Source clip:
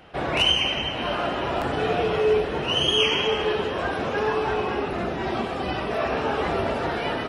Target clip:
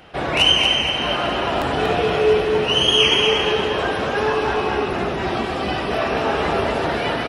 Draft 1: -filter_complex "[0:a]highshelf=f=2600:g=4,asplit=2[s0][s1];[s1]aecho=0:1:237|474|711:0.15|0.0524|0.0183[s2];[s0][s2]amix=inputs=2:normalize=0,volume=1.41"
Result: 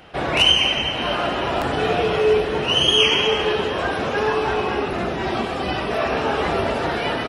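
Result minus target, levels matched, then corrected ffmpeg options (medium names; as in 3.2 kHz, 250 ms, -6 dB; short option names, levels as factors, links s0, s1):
echo-to-direct -11 dB
-filter_complex "[0:a]highshelf=f=2600:g=4,asplit=2[s0][s1];[s1]aecho=0:1:237|474|711|948:0.531|0.186|0.065|0.0228[s2];[s0][s2]amix=inputs=2:normalize=0,volume=1.41"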